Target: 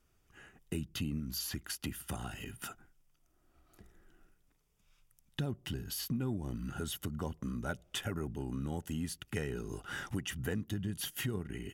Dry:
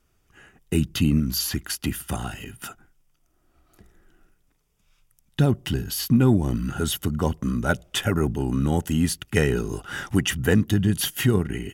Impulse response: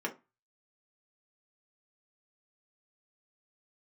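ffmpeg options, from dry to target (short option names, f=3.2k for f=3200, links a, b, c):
-af "acompressor=threshold=-33dB:ratio=2.5,volume=-5.5dB"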